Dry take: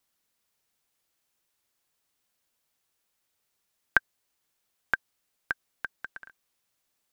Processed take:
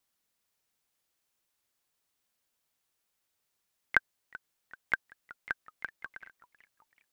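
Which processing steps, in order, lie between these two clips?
pitch-shifted copies added +5 semitones −15 dB
feedback echo with a swinging delay time 378 ms, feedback 51%, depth 202 cents, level −20 dB
level −3 dB

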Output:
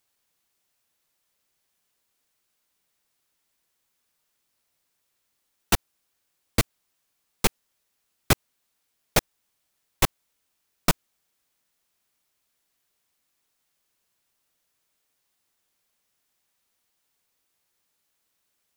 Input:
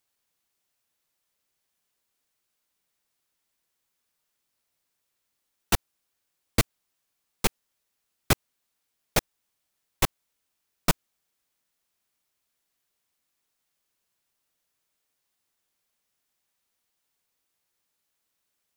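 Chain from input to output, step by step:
brickwall limiter −9.5 dBFS, peak gain reduction 4 dB
level +3.5 dB

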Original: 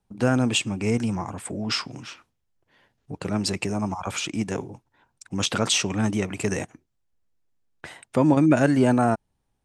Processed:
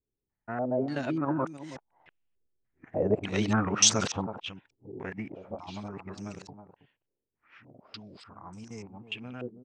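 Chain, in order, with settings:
played backwards from end to start
source passing by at 0:03.39, 7 m/s, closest 5.3 metres
on a send: single-tap delay 322 ms −12.5 dB
on the sum: low-pass on a step sequencer 3.4 Hz 410–6,100 Hz
level −3 dB

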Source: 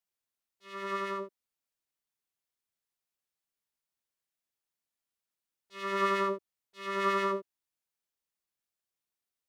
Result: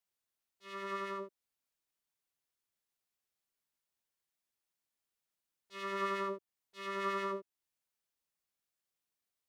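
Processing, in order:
downward compressor 1.5 to 1, threshold −45 dBFS, peak gain reduction 7.5 dB

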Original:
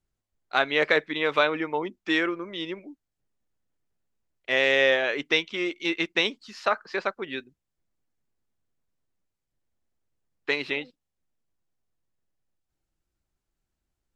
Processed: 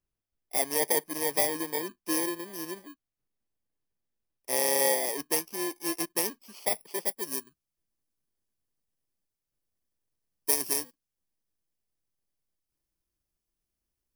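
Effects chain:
samples in bit-reversed order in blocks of 32 samples
bass and treble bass −4 dB, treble −3 dB, from 0:07.07 treble +4 dB
level −2.5 dB

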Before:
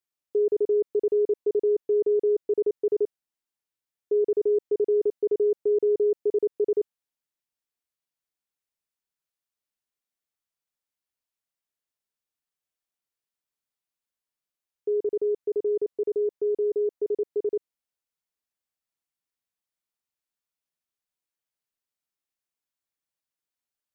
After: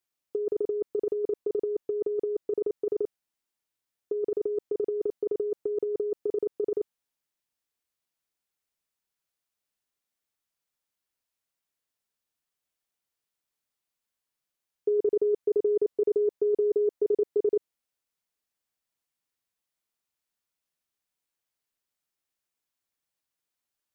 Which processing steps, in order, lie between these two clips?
compressor whose output falls as the input rises −25 dBFS, ratio −0.5

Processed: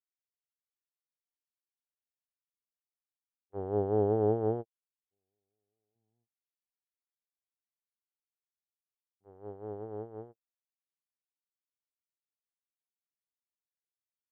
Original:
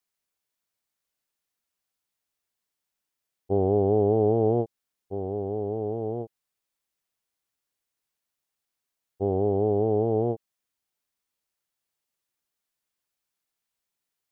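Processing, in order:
noise gate −19 dBFS, range −59 dB
0:05.95–0:09.25: octave-band graphic EQ 125/250/500/1,000 Hz +11/+9/−7/+11 dB

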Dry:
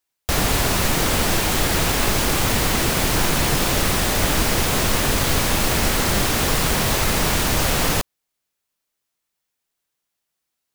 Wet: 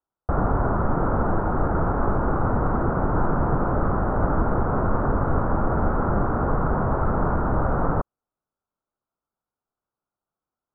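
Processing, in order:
Chebyshev low-pass filter 1,400 Hz, order 5

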